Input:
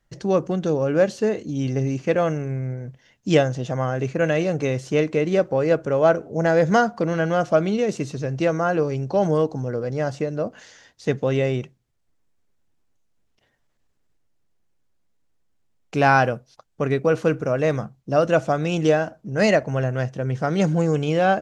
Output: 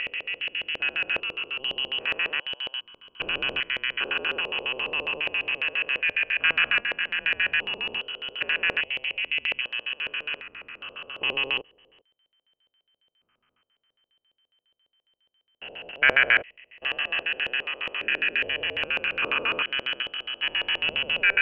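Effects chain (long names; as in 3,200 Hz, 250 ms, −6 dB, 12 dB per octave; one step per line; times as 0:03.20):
spectrum averaged block by block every 400 ms
voice inversion scrambler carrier 3,100 Hz
auto-filter low-pass square 7.3 Hz 530–1,800 Hz
level +1.5 dB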